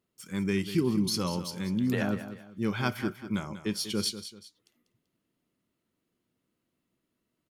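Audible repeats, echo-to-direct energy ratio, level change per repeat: 2, −11.5 dB, −9.0 dB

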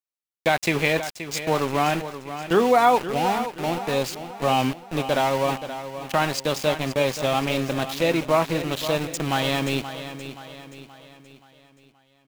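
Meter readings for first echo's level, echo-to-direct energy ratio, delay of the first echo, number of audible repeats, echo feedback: −11.5 dB, −10.5 dB, 526 ms, 4, 47%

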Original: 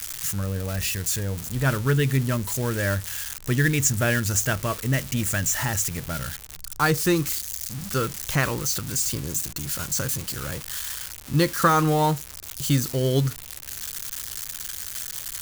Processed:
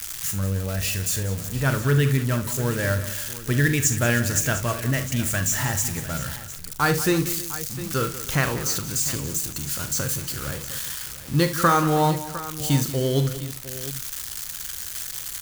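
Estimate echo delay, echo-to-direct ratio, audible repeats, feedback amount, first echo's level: 42 ms, −7.0 dB, 5, repeats not evenly spaced, −11.0 dB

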